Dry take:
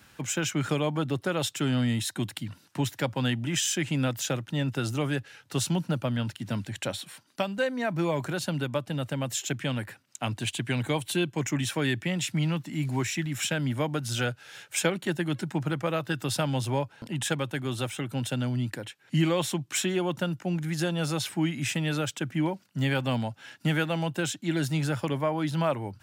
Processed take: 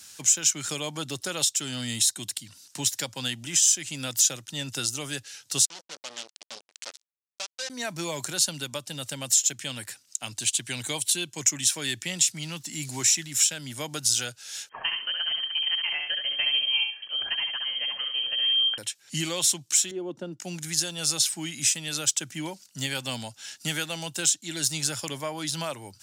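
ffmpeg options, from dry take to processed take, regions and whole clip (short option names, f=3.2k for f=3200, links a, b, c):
-filter_complex "[0:a]asettb=1/sr,asplit=3[a][b][c];[a]atrim=end=5.654[d];[b]atrim=start=5.65:end=7.7,asetpts=PTS-STARTPTS,afade=t=in:d=0.004:c=qsin,afade=t=out:st=2.046:d=0.004:c=qsin,acrusher=bits=3:mix=0:aa=0.5,volume=27.5dB,asoftclip=hard,volume=-27.5dB,highpass=450,lowpass=5.2k[e];[c]atrim=start=7.696[f];[d][e]acrossfade=d=0.004:c1=hsin:c2=qsin[g];[g][f]acrossfade=d=0.004:c1=qsin:c2=hsin,asettb=1/sr,asplit=3[h][i][j];[h]atrim=end=14.694[k];[i]atrim=start=14.69:end=18.78,asetpts=PTS-STARTPTS,afade=t=in:d=0.004:c=qsin,afade=t=out:st=4.086:d=0.004:c=qsin,equalizer=f=340:t=o:w=2.3:g=-8,lowpass=f=2.8k:t=q:w=0.5098,lowpass=f=2.8k:t=q:w=0.6013,lowpass=f=2.8k:t=q:w=0.9,lowpass=f=2.8k:t=q:w=2.563,afreqshift=-3300,aecho=1:1:68|136|204|272:0.596|0.155|0.0403|0.0105,atrim=end_sample=180369[l];[j]atrim=start=18.776[m];[k][l]acrossfade=d=0.004:c1=hsin:c2=qsin[n];[n][m]acrossfade=d=0.004:c1=qsin:c2=hsin,asettb=1/sr,asplit=3[o][p][q];[o]atrim=end=19.914[r];[p]atrim=start=19.91:end=20.4,asetpts=PTS-STARTPTS,afade=t=in:d=0.004:c=qsin,afade=t=out:st=0.486:d=0.004:c=qsin,bandpass=f=340:t=q:w=1.7,acontrast=59[s];[q]atrim=start=20.396[t];[r][s]acrossfade=d=0.004:c1=hsin:c2=qsin[u];[u][t]acrossfade=d=0.004:c1=qsin:c2=hsin,bass=f=250:g=-3,treble=f=4k:g=11,alimiter=limit=-16.5dB:level=0:latency=1:release=492,equalizer=f=6.3k:t=o:w=2.3:g=14.5,volume=-6dB"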